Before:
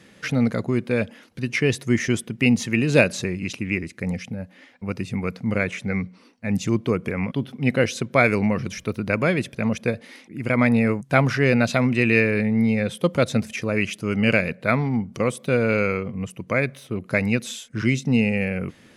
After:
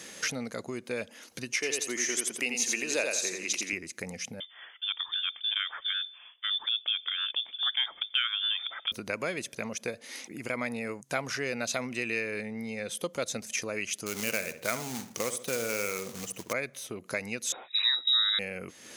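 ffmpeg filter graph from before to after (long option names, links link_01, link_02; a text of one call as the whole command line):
ffmpeg -i in.wav -filter_complex "[0:a]asettb=1/sr,asplit=3[link_01][link_02][link_03];[link_01]atrim=end=1.544[link_04];[link_02]atrim=start=1.54:end=3.73,asetpts=PTS-STARTPTS,afade=type=in:duration=0.004:curve=qsin,afade=type=out:start_time=2.186:duration=0.004:curve=qsin,highpass=340,aecho=1:1:85|170|255|340:0.596|0.161|0.0434|0.0117,atrim=end_sample=96579[link_05];[link_03]atrim=start=3.726[link_06];[link_04][link_05]acrossfade=duration=0.004:curve1=hsin:curve2=qsin[link_07];[link_07][link_06]acrossfade=duration=0.004:curve1=qsin:curve2=hsin,asettb=1/sr,asplit=3[link_08][link_09][link_10];[link_08]atrim=end=4.404[link_11];[link_09]atrim=start=4.4:end=8.92,asetpts=PTS-STARTPTS,afade=type=in:duration=0.004:curve=qsin,afade=type=out:start_time=4.516:duration=0.004:curve=qsin,highpass=frequency=470:poles=1,highshelf=frequency=2500:gain=-8,lowpass=frequency=3100:width_type=q:width=0.5098,lowpass=frequency=3100:width_type=q:width=0.6013,lowpass=frequency=3100:width_type=q:width=0.9,lowpass=frequency=3100:width_type=q:width=2.563,afreqshift=-3700[link_12];[link_10]atrim=start=8.916[link_13];[link_11][link_12]acrossfade=duration=0.004:curve1=hsin:curve2=qsin[link_14];[link_14][link_13]acrossfade=duration=0.004:curve1=qsin:curve2=hsin,asettb=1/sr,asplit=3[link_15][link_16][link_17];[link_15]atrim=end=14.064[link_18];[link_16]atrim=start=14.06:end=16.53,asetpts=PTS-STARTPTS,afade=type=in:duration=0.004:curve=qsin,afade=type=out:start_time=2.466:duration=0.004:curve=qsin,acrusher=bits=3:mode=log:mix=0:aa=0.000001,asplit=2[link_19][link_20];[link_20]adelay=68,lowpass=frequency=1800:poles=1,volume=-11dB,asplit=2[link_21][link_22];[link_22]adelay=68,lowpass=frequency=1800:poles=1,volume=0.34,asplit=2[link_23][link_24];[link_24]adelay=68,lowpass=frequency=1800:poles=1,volume=0.34,asplit=2[link_25][link_26];[link_26]adelay=68,lowpass=frequency=1800:poles=1,volume=0.34[link_27];[link_19][link_21][link_23][link_25][link_27]amix=inputs=5:normalize=0,atrim=end_sample=108927[link_28];[link_17]atrim=start=16.526[link_29];[link_18][link_28]acrossfade=duration=0.004:curve1=hsin:curve2=qsin[link_30];[link_30][link_29]acrossfade=duration=0.004:curve1=qsin:curve2=hsin,asettb=1/sr,asplit=3[link_31][link_32][link_33];[link_31]atrim=end=17.524[link_34];[link_32]atrim=start=17.52:end=18.39,asetpts=PTS-STARTPTS,afade=type=in:duration=0.004:curve=qsin,afade=type=out:start_time=0.866:duration=0.004:curve=qsin,equalizer=frequency=1900:width_type=o:width=0.29:gain=4.5,lowpass=frequency=3400:width_type=q:width=0.5098,lowpass=frequency=3400:width_type=q:width=0.6013,lowpass=frequency=3400:width_type=q:width=0.9,lowpass=frequency=3400:width_type=q:width=2.563,afreqshift=-4000[link_35];[link_33]atrim=start=18.386[link_36];[link_34][link_35]acrossfade=duration=0.004:curve1=hsin:curve2=qsin[link_37];[link_37][link_36]acrossfade=duration=0.004:curve1=qsin:curve2=hsin,equalizer=frequency=6400:width_type=o:width=0.21:gain=6.5,acompressor=threshold=-40dB:ratio=2.5,bass=frequency=250:gain=-13,treble=frequency=4000:gain=10,volume=4.5dB" out.wav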